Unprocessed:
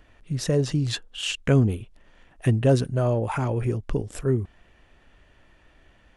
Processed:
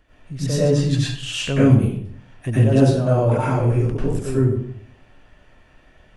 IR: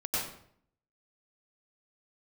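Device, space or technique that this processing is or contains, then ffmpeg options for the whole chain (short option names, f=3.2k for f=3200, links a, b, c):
bathroom: -filter_complex "[1:a]atrim=start_sample=2205[a];[0:a][a]afir=irnorm=-1:irlink=0,volume=-2dB"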